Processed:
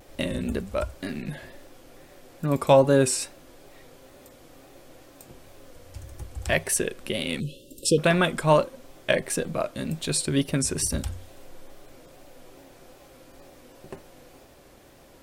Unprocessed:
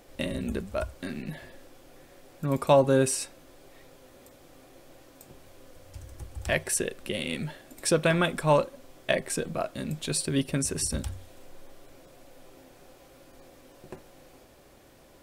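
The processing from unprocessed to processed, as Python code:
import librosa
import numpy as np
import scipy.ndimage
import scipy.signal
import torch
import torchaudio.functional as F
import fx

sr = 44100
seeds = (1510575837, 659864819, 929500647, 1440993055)

y = fx.spec_erase(x, sr, start_s=7.4, length_s=0.58, low_hz=600.0, high_hz=2600.0)
y = fx.wow_flutter(y, sr, seeds[0], rate_hz=2.1, depth_cents=72.0)
y = F.gain(torch.from_numpy(y), 3.0).numpy()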